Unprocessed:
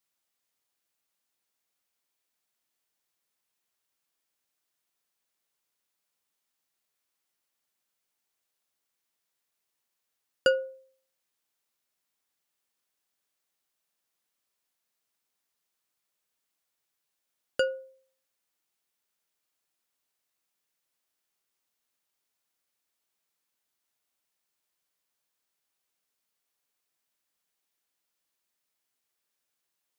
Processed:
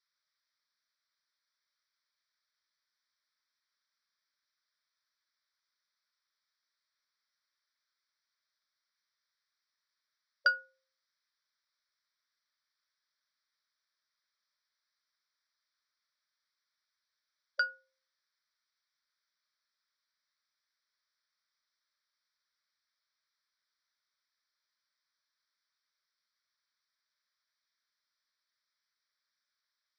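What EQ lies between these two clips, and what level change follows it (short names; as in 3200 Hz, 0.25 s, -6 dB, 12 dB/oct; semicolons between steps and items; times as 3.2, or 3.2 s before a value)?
brick-wall FIR band-pass 560–6000 Hz; fixed phaser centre 2800 Hz, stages 6; +3.0 dB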